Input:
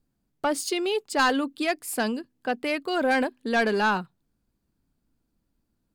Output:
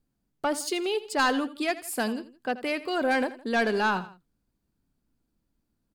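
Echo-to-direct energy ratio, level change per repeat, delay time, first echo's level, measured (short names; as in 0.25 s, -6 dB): -15.0 dB, -6.5 dB, 82 ms, -16.0 dB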